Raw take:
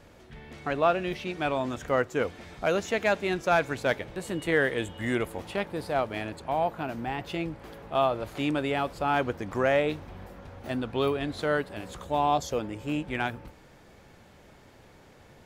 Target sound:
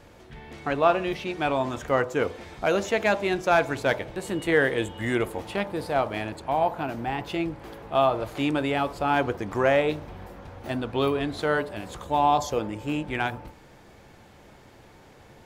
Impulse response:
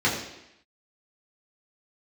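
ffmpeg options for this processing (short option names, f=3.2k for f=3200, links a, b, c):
-filter_complex "[0:a]asplit=2[a][b];[b]highshelf=f=1.6k:t=q:w=3:g=-13.5[c];[1:a]atrim=start_sample=2205,asetrate=79380,aresample=44100[d];[c][d]afir=irnorm=-1:irlink=0,volume=-23.5dB[e];[a][e]amix=inputs=2:normalize=0,volume=2.5dB"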